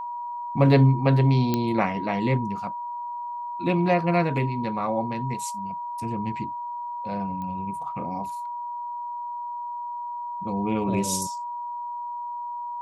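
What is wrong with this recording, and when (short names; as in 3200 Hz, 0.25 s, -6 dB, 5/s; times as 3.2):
tone 960 Hz -30 dBFS
1.54 pop -10 dBFS
7.42 pop -24 dBFS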